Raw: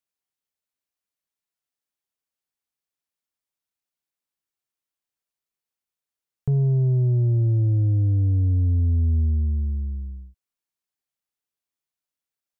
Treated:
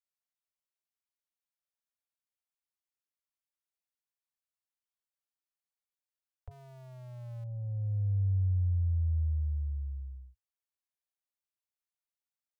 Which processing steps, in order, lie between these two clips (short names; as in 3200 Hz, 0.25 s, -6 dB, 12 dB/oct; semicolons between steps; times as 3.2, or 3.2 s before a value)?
6.51–7.44 zero-crossing step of -41.5 dBFS; Chebyshev band-stop 100–530 Hz, order 4; gain -8.5 dB